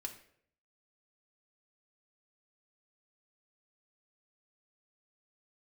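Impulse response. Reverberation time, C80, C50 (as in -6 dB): 0.65 s, 14.0 dB, 10.5 dB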